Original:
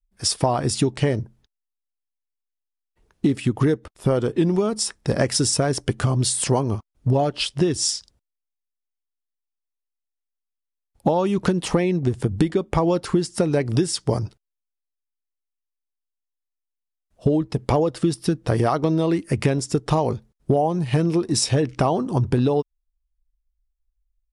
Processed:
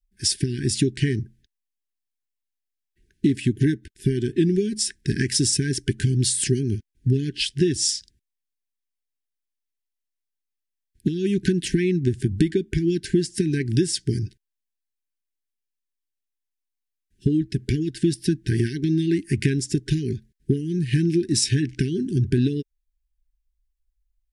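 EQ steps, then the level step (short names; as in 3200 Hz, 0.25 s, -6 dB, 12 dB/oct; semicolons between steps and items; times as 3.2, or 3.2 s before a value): brick-wall FIR band-stop 420–1500 Hz; 0.0 dB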